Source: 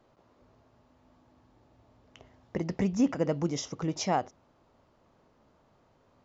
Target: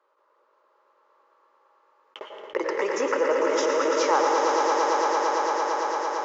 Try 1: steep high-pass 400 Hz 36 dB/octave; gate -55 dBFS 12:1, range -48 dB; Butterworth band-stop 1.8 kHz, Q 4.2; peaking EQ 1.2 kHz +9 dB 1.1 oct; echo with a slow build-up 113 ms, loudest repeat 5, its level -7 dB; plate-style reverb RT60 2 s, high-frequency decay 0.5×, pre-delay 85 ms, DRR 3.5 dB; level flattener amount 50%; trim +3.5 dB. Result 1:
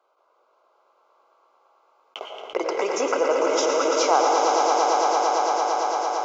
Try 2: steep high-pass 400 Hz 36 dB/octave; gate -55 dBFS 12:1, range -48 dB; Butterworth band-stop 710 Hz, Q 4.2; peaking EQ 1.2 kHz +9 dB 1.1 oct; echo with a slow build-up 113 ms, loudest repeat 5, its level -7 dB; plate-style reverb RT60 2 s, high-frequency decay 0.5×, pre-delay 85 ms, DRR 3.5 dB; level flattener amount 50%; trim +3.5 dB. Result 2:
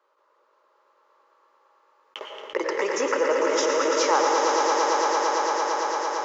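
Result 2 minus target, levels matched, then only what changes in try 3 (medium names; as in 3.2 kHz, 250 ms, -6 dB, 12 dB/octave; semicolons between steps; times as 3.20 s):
8 kHz band +4.5 dB
add after steep high-pass: treble shelf 3.1 kHz -6.5 dB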